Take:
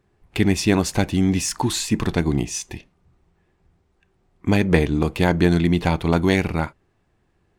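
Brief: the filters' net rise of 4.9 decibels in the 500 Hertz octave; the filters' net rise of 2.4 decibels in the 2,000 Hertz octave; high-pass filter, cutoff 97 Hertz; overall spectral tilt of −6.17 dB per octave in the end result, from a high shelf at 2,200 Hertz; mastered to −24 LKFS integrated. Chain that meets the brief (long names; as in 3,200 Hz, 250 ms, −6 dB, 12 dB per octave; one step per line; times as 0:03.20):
high-pass filter 97 Hz
parametric band 500 Hz +6.5 dB
parametric band 2,000 Hz +6.5 dB
high-shelf EQ 2,200 Hz −7.5 dB
level −5 dB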